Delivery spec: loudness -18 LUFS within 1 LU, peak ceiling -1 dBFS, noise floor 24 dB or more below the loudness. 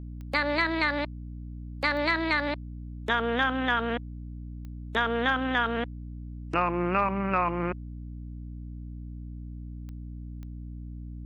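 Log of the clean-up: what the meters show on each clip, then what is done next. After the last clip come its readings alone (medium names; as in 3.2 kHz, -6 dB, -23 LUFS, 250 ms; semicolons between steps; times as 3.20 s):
clicks found 5; hum 60 Hz; highest harmonic 300 Hz; hum level -36 dBFS; loudness -27.5 LUFS; peak level -13.0 dBFS; loudness target -18.0 LUFS
-> de-click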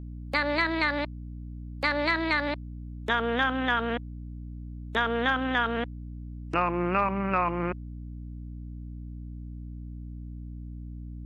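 clicks found 0; hum 60 Hz; highest harmonic 300 Hz; hum level -36 dBFS
-> hum notches 60/120/180/240/300 Hz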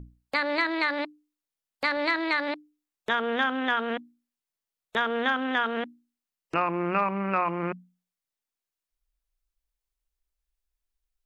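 hum not found; loudness -27.5 LUFS; peak level -13.5 dBFS; loudness target -18.0 LUFS
-> trim +9.5 dB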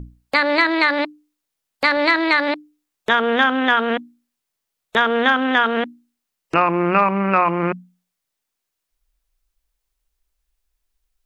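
loudness -18.0 LUFS; peak level -4.0 dBFS; noise floor -80 dBFS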